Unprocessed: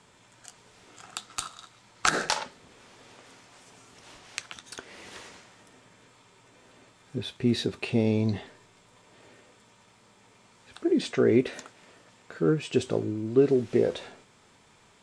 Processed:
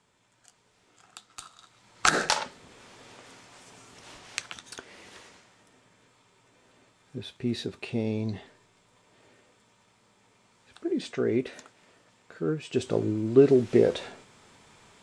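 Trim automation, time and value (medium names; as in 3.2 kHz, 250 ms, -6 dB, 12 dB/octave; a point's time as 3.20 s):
1.41 s -10 dB
2.07 s +2 dB
4.47 s +2 dB
5.19 s -5 dB
12.64 s -5 dB
13.06 s +3 dB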